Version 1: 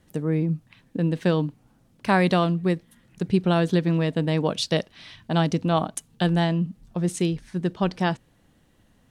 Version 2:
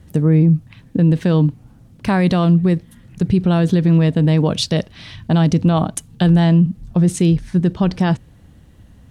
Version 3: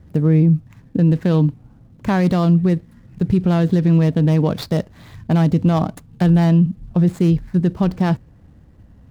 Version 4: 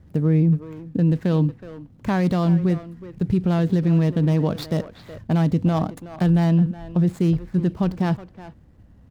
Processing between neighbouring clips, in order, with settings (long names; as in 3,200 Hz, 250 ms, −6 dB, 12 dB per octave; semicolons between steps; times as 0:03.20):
parametric band 68 Hz +14.5 dB 2.7 octaves; brickwall limiter −13 dBFS, peak gain reduction 8.5 dB; level +6.5 dB
running median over 15 samples; level −1 dB
far-end echo of a speakerphone 370 ms, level −11 dB; level −4 dB